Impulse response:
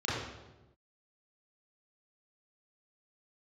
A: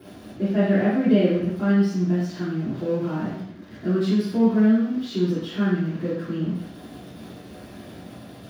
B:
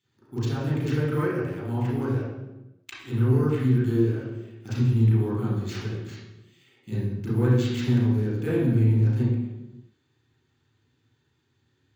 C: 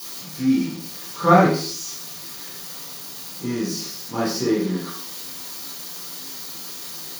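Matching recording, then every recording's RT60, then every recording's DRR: B; 0.70, 1.1, 0.50 seconds; −13.5, −10.0, −7.5 decibels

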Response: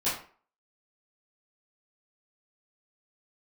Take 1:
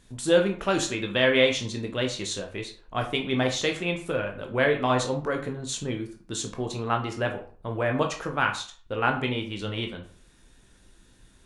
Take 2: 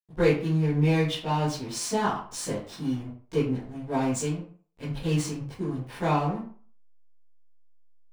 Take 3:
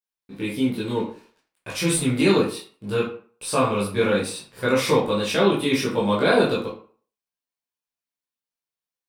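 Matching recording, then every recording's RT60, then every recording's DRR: 2; 0.45, 0.45, 0.45 seconds; 2.5, −12.5, −7.0 decibels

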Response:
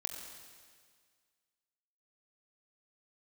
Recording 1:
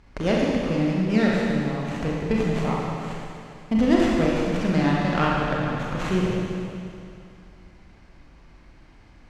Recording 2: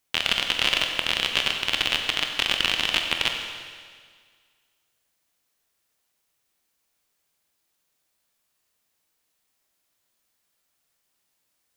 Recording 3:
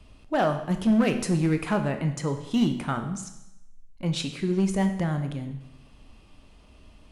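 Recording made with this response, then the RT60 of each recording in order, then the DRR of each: 2; 2.5, 1.8, 0.85 seconds; −4.0, 3.0, 6.5 decibels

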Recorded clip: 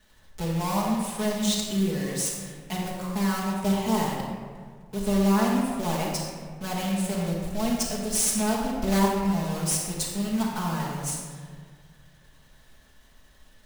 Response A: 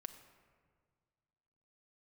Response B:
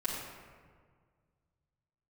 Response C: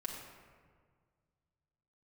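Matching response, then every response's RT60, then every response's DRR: B; 1.8, 1.8, 1.8 seconds; 7.0, −8.0, −2.5 decibels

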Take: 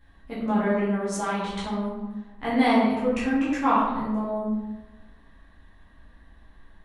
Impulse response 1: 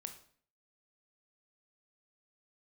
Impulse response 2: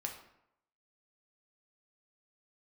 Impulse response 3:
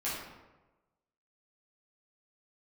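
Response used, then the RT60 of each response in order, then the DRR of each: 3; 0.50, 0.80, 1.1 seconds; 6.5, 1.0, −10.0 decibels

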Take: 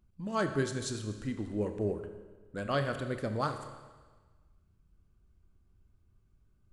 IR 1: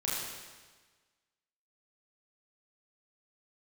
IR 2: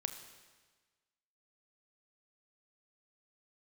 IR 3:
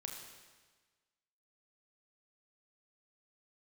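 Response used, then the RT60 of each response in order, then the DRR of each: 2; 1.4, 1.4, 1.4 seconds; −7.0, 7.0, 1.0 decibels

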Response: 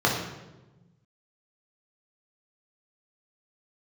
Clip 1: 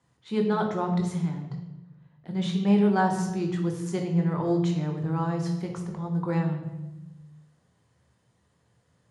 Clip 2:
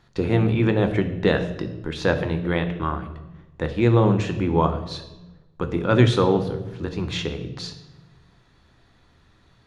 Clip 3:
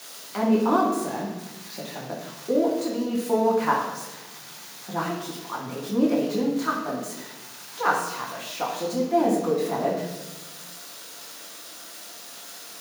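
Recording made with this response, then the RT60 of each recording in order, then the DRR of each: 3; 1.1, 1.1, 1.1 seconds; 2.0, 7.5, −2.5 decibels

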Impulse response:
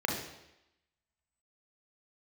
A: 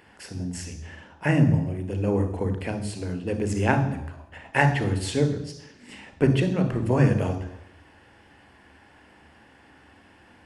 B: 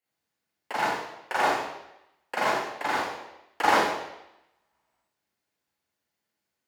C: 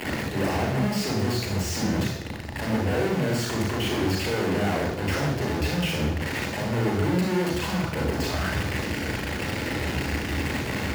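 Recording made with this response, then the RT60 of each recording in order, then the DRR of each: C; 0.90, 0.90, 0.90 seconds; 7.0, −5.5, −0.5 decibels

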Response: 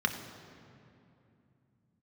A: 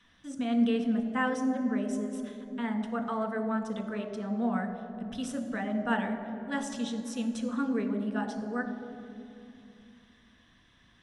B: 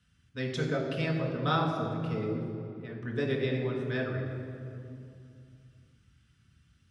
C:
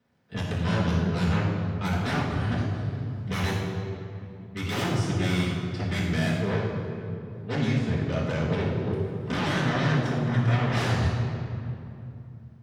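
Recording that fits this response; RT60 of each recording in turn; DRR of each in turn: A; 2.7, 2.7, 2.7 seconds; 4.5, −2.0, −8.5 decibels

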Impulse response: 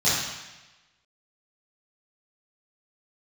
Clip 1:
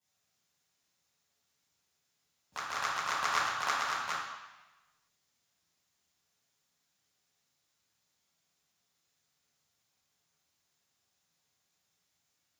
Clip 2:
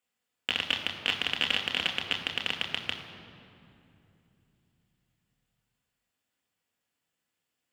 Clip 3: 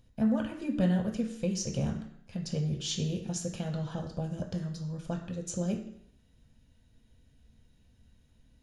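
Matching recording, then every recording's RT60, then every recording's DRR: 1; 1.1, 2.9, 0.70 seconds; −12.5, 1.5, 1.5 decibels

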